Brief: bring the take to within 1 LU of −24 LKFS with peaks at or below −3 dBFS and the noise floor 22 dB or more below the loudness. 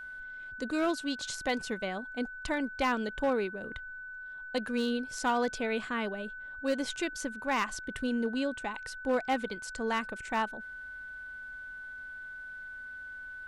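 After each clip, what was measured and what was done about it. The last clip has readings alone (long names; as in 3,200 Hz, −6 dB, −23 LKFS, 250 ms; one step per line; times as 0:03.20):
share of clipped samples 0.4%; peaks flattened at −22.0 dBFS; interfering tone 1,500 Hz; level of the tone −41 dBFS; integrated loudness −34.0 LKFS; sample peak −22.0 dBFS; target loudness −24.0 LKFS
→ clipped peaks rebuilt −22 dBFS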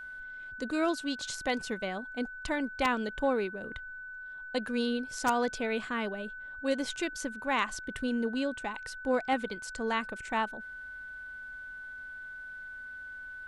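share of clipped samples 0.0%; interfering tone 1,500 Hz; level of the tone −41 dBFS
→ notch filter 1,500 Hz, Q 30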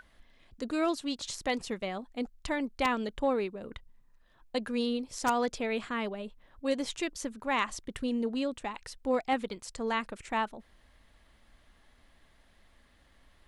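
interfering tone none found; integrated loudness −33.0 LKFS; sample peak −13.5 dBFS; target loudness −24.0 LKFS
→ level +9 dB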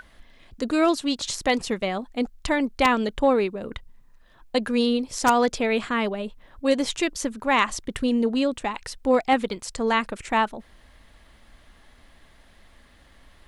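integrated loudness −24.0 LKFS; sample peak −4.5 dBFS; background noise floor −55 dBFS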